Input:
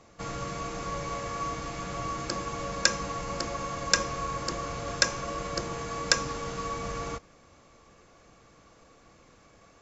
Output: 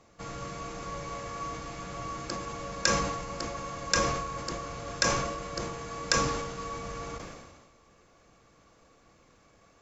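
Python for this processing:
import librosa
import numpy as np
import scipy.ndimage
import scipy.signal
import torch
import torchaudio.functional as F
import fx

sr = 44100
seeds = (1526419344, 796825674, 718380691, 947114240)

y = fx.sustainer(x, sr, db_per_s=40.0)
y = y * 10.0 ** (-4.0 / 20.0)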